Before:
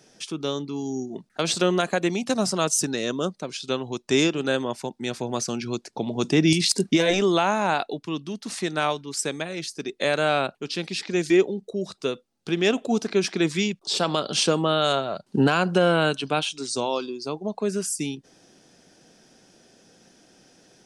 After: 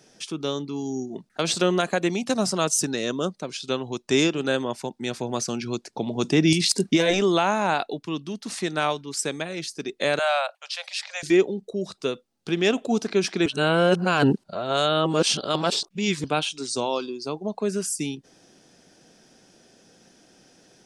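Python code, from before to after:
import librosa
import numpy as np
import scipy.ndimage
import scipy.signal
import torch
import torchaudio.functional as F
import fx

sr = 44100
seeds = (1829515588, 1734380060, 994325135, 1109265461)

y = fx.steep_highpass(x, sr, hz=540.0, slope=96, at=(10.19, 11.23))
y = fx.edit(y, sr, fx.reverse_span(start_s=13.46, length_s=2.78), tone=tone)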